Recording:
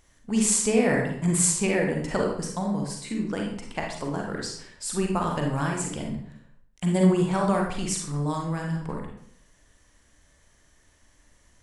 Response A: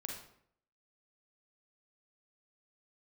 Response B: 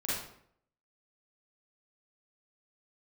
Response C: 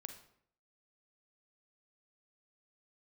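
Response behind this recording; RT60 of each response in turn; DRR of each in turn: A; 0.65 s, 0.65 s, 0.65 s; 0.0 dB, -9.0 dB, 6.5 dB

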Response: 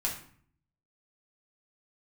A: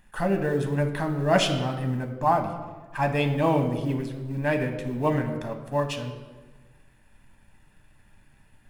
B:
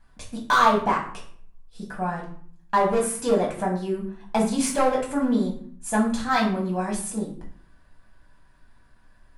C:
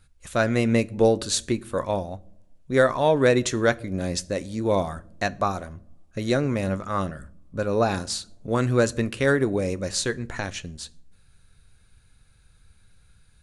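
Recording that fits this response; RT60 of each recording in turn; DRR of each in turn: B; 1.3 s, 0.55 s, no single decay rate; 4.5 dB, -3.0 dB, 14.0 dB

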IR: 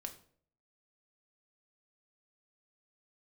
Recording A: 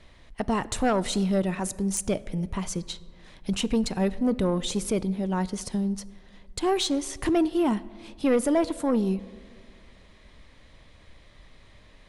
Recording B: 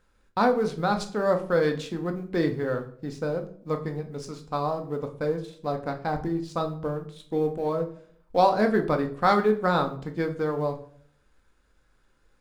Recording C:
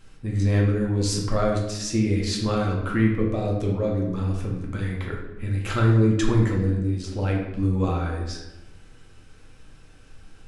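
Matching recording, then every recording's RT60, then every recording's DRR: B; 2.3 s, 0.55 s, 0.95 s; 16.0 dB, 4.5 dB, -2.0 dB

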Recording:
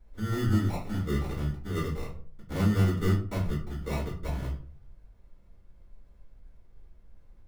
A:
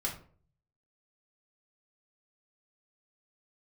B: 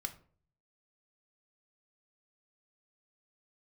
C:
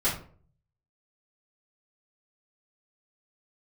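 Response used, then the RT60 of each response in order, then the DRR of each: C; 0.45 s, 0.50 s, 0.45 s; -2.5 dB, 6.0 dB, -10.5 dB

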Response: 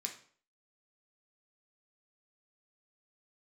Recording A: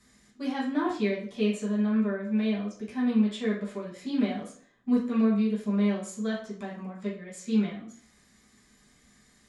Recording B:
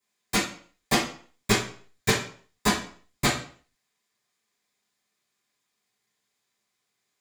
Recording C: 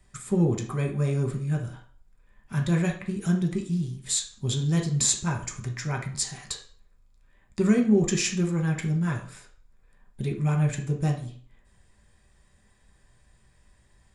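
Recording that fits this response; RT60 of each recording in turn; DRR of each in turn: C; 0.50 s, 0.50 s, 0.50 s; -8.0 dB, -14.5 dB, 1.0 dB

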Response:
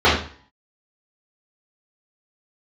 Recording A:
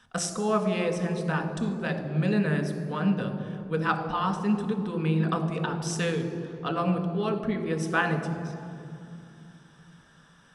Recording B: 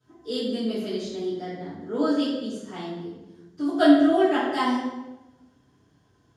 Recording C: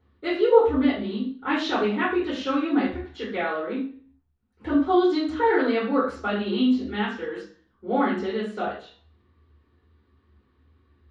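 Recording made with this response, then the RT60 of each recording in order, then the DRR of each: C; 2.7 s, 1.1 s, 0.45 s; 4.5 dB, -16.0 dB, -11.0 dB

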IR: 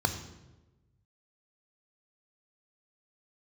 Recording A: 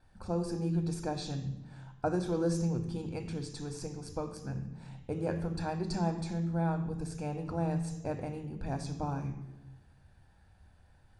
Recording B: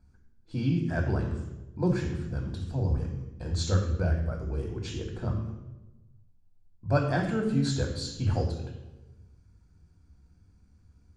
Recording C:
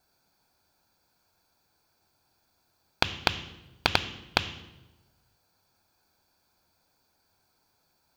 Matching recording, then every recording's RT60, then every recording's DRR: A; 1.1 s, 1.1 s, 1.1 s; 6.5 dB, 2.0 dB, 12.0 dB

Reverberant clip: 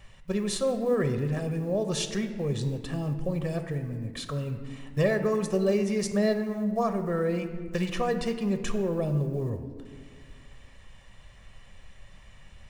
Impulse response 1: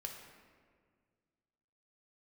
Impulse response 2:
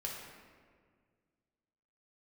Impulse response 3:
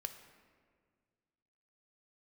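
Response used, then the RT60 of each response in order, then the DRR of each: 3; 1.8 s, 1.8 s, 1.8 s; 1.5 dB, -2.5 dB, 7.5 dB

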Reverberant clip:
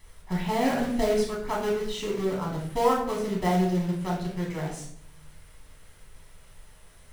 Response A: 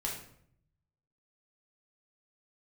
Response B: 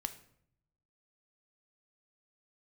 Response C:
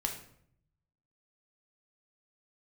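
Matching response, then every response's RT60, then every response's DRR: A; 0.65 s, 0.65 s, 0.65 s; -3.5 dB, 8.5 dB, 1.5 dB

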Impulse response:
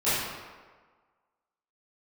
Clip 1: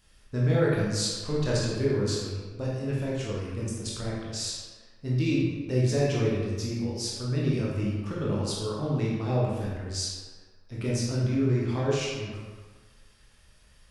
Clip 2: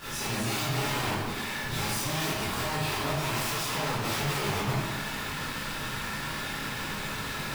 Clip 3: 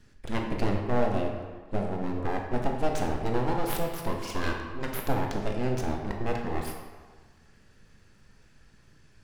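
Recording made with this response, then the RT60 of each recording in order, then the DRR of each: 2; 1.5 s, 1.5 s, 1.5 s; -6.0 dB, -15.5 dB, 1.0 dB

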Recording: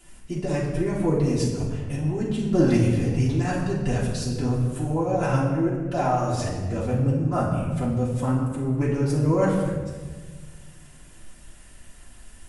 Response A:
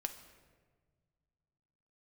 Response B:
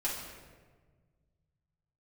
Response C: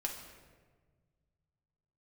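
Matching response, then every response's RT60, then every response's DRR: B; 1.5 s, 1.5 s, 1.5 s; 6.5 dB, -8.0 dB, 0.0 dB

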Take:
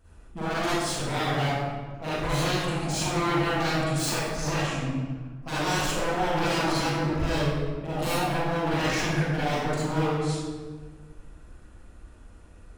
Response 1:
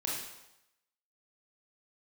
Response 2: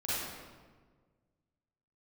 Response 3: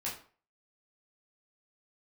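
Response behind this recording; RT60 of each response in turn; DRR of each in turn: 2; 0.90 s, 1.5 s, 0.45 s; -4.5 dB, -11.0 dB, -6.5 dB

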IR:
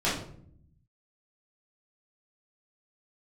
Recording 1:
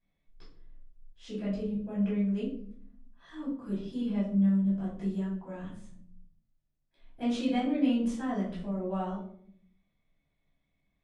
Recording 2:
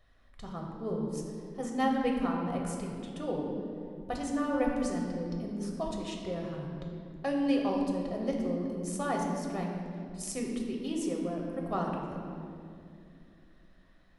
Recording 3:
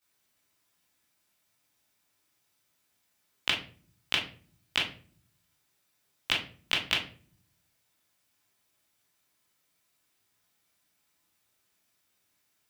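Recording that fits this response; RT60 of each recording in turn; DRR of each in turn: 1; 0.60 s, 2.5 s, 0.45 s; -10.0 dB, -0.5 dB, -10.5 dB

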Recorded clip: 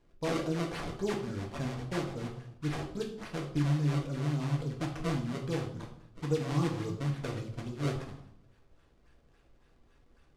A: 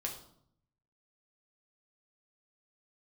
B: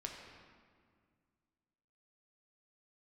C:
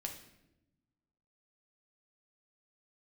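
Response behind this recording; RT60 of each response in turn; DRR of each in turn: A; 0.65 s, 1.9 s, 0.90 s; -0.5 dB, 0.5 dB, 2.0 dB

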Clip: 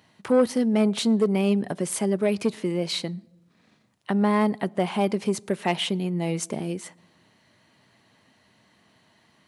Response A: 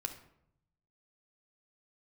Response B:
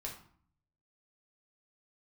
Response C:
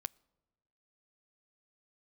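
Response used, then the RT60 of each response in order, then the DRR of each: C; 0.75 s, 0.55 s, 1.1 s; 5.5 dB, -2.0 dB, 19.5 dB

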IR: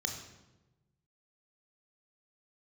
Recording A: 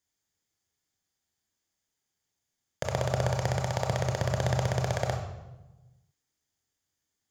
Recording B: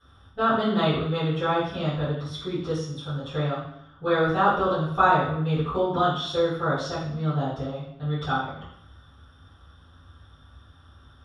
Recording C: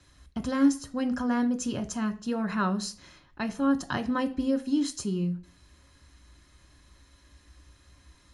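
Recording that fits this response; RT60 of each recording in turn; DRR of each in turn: A; 1.1 s, 0.70 s, 0.45 s; 3.0 dB, -16.5 dB, 6.0 dB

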